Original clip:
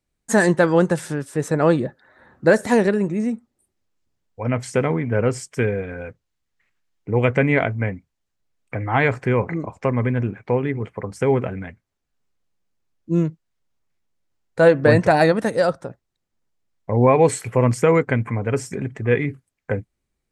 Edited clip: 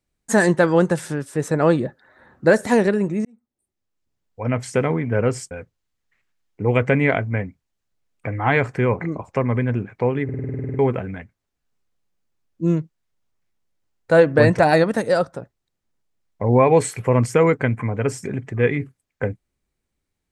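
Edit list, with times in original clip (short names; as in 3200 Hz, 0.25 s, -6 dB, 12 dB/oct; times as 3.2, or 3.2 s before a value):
3.25–4.47 fade in
5.51–5.99 cut
10.72 stutter in place 0.05 s, 11 plays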